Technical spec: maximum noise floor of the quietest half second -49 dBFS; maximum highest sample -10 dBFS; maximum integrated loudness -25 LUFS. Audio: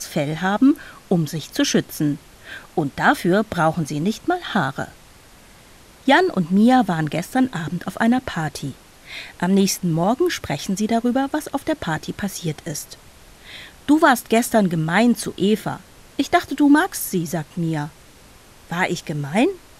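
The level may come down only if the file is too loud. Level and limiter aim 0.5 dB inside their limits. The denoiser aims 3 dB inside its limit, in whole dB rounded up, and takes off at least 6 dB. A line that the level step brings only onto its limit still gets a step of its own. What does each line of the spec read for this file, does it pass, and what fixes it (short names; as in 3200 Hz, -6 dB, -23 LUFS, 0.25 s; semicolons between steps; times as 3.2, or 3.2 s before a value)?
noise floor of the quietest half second -47 dBFS: fail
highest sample -2.5 dBFS: fail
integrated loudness -20.5 LUFS: fail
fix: gain -5 dB; limiter -10.5 dBFS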